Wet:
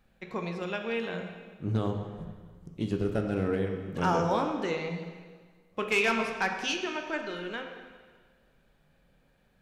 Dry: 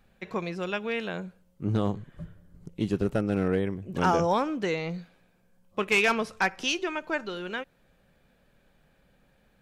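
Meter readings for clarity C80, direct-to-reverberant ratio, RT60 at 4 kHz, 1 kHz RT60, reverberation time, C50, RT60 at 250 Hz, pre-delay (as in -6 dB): 7.0 dB, 4.0 dB, 1.5 s, 1.6 s, 1.6 s, 5.5 dB, 1.6 s, 6 ms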